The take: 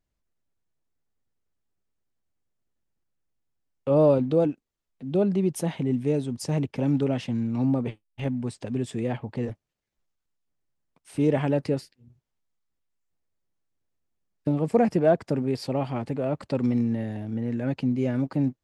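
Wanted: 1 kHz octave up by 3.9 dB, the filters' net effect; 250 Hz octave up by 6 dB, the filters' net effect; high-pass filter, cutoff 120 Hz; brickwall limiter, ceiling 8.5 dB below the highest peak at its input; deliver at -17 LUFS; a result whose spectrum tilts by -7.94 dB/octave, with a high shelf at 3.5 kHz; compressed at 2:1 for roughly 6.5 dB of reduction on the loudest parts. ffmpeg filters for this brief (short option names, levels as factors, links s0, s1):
-af "highpass=120,equalizer=f=250:t=o:g=7,equalizer=f=1000:t=o:g=5.5,highshelf=f=3500:g=-3.5,acompressor=threshold=0.0708:ratio=2,volume=3.35,alimiter=limit=0.422:level=0:latency=1"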